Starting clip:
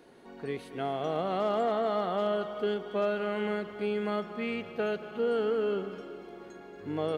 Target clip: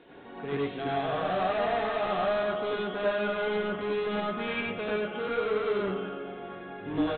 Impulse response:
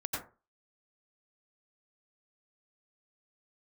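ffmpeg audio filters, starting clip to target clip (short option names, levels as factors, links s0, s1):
-filter_complex "[0:a]aemphasis=mode=production:type=75fm,aresample=8000,volume=44.7,asoftclip=hard,volume=0.0224,aresample=44100[s0];[1:a]atrim=start_sample=2205,atrim=end_sample=6174[s1];[s0][s1]afir=irnorm=-1:irlink=0,volume=1.5"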